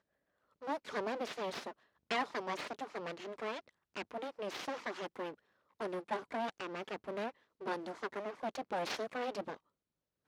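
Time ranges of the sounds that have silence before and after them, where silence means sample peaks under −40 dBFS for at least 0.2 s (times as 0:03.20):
0:00.64–0:01.71
0:02.11–0:03.59
0:03.96–0:05.30
0:05.81–0:07.30
0:07.63–0:09.54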